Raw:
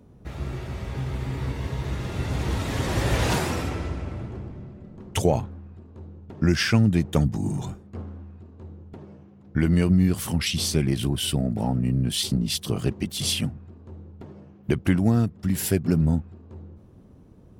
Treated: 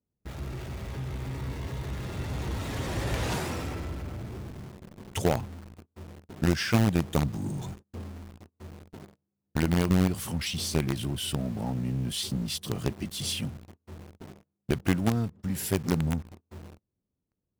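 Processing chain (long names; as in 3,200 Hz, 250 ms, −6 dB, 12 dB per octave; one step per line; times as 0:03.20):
in parallel at −9.5 dB: log-companded quantiser 2 bits
on the sum: noise gate −37 dBFS, range −26 dB
level −8.5 dB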